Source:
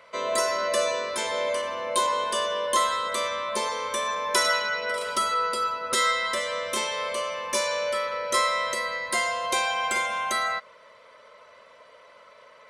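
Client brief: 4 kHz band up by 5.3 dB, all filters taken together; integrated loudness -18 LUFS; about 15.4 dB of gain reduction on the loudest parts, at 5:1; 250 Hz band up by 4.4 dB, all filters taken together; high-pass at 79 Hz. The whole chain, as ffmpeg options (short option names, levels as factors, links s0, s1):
-af "highpass=79,equalizer=f=250:t=o:g=6,equalizer=f=4000:t=o:g=6.5,acompressor=threshold=0.0178:ratio=5,volume=7.5"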